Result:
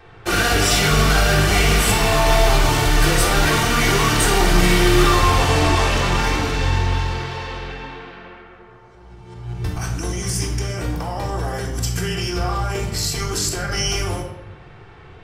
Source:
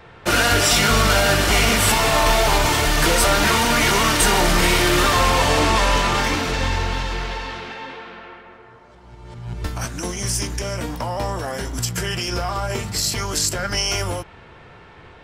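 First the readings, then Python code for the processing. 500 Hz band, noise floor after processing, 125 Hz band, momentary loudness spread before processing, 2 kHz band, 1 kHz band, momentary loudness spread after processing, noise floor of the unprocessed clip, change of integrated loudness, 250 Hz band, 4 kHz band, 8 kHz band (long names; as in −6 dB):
+0.5 dB, −43 dBFS, +4.0 dB, 13 LU, −0.5 dB, −1.0 dB, 13 LU, −45 dBFS, 0.0 dB, +2.0 dB, −1.5 dB, −1.5 dB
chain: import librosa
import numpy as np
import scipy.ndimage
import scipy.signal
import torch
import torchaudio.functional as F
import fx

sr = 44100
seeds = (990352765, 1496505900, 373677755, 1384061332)

y = fx.room_shoebox(x, sr, seeds[0], volume_m3=2600.0, walls='furnished', distance_m=3.6)
y = y * librosa.db_to_amplitude(-4.0)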